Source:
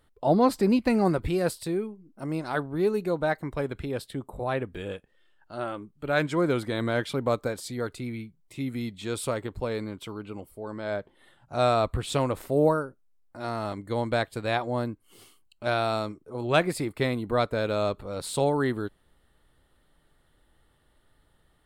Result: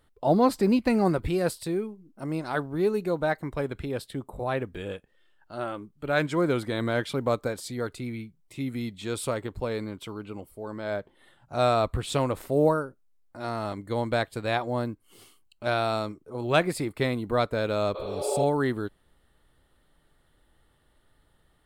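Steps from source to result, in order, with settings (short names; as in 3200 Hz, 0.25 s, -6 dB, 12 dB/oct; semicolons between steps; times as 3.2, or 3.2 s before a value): spectral repair 17.98–18.41, 310–4500 Hz both; short-mantissa float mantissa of 6-bit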